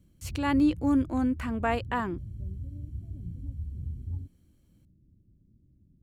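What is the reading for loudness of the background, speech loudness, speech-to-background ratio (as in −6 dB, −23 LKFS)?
−39.5 LKFS, −28.0 LKFS, 11.5 dB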